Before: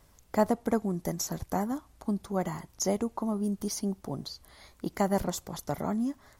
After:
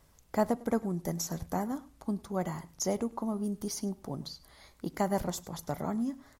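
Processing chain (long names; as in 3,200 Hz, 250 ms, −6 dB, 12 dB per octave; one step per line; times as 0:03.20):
single-tap delay 102 ms −20.5 dB
convolution reverb RT60 0.40 s, pre-delay 3 ms, DRR 17 dB
level −2.5 dB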